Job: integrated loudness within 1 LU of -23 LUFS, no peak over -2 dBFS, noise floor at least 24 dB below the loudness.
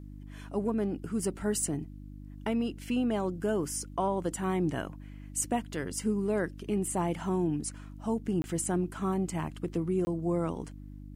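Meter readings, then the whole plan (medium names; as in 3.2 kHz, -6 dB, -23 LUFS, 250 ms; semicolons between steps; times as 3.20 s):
dropouts 2; longest dropout 20 ms; hum 50 Hz; highest harmonic 300 Hz; hum level -43 dBFS; loudness -32.0 LUFS; peak level -16.0 dBFS; loudness target -23.0 LUFS
-> interpolate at 8.42/10.05 s, 20 ms; de-hum 50 Hz, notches 6; trim +9 dB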